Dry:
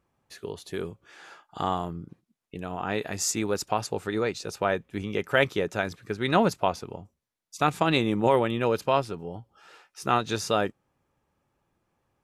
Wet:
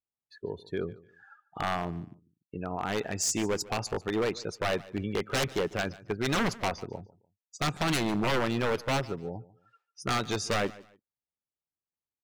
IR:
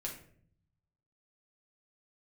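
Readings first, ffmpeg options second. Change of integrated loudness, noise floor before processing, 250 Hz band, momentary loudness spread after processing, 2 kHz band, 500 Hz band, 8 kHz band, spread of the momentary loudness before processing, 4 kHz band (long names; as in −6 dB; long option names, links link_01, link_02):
−4.0 dB, −79 dBFS, −3.0 dB, 13 LU, −2.5 dB, −5.0 dB, −0.5 dB, 16 LU, −0.5 dB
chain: -filter_complex "[0:a]afftdn=noise_reduction=31:noise_floor=-40,aeval=exprs='0.0841*(abs(mod(val(0)/0.0841+3,4)-2)-1)':channel_layout=same,asplit=2[link_01][link_02];[link_02]aecho=0:1:147|294:0.1|0.026[link_03];[link_01][link_03]amix=inputs=2:normalize=0"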